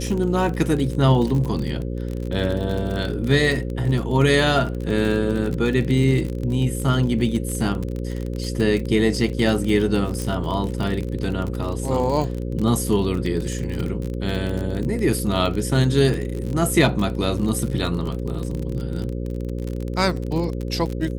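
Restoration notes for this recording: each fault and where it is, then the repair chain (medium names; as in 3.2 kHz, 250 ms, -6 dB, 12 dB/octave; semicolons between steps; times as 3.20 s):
buzz 60 Hz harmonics 9 -27 dBFS
crackle 37 per s -25 dBFS
10.22 s: pop -13 dBFS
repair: de-click; de-hum 60 Hz, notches 9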